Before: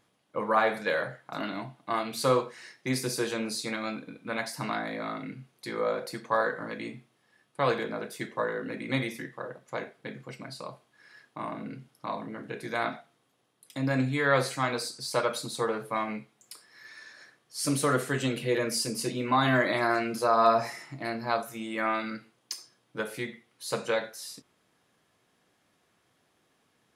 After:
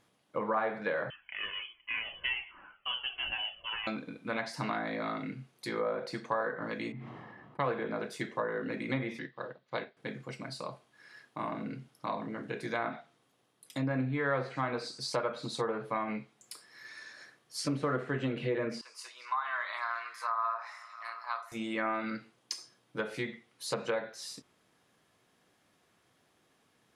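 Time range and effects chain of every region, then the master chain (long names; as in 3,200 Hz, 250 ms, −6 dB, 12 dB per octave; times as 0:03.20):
0:01.10–0:03.87: voice inversion scrambler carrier 3,200 Hz + flanger whose copies keep moving one way falling 1.4 Hz
0:06.92–0:07.65: low-pass that shuts in the quiet parts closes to 1,100 Hz, open at −30 dBFS + comb filter 1 ms, depth 32% + level that may fall only so fast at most 25 dB per second
0:09.19–0:09.97: high shelf with overshoot 5,800 Hz −12.5 dB, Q 3 + expander for the loud parts, over −55 dBFS
0:18.81–0:21.52: four-pole ladder high-pass 960 Hz, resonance 55% + echo through a band-pass that steps 227 ms, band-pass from 4,000 Hz, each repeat −0.7 octaves, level −11 dB
whole clip: treble cut that deepens with the level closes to 2,000 Hz, closed at −25.5 dBFS; downward compressor 2.5 to 1, threshold −30 dBFS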